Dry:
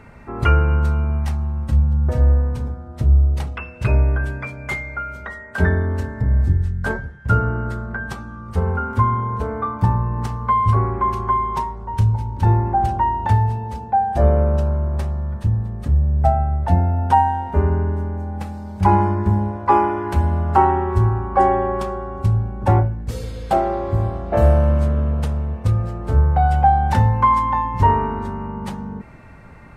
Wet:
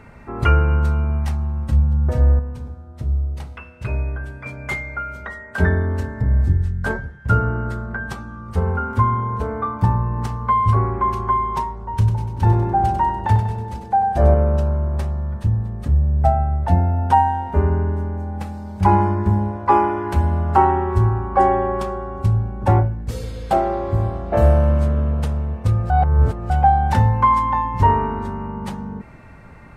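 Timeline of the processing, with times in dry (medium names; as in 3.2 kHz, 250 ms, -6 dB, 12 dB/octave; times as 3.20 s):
2.39–4.46 s: feedback comb 81 Hz, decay 1 s
11.90–14.34 s: feedback delay 97 ms, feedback 54%, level -8 dB
25.90–26.50 s: reverse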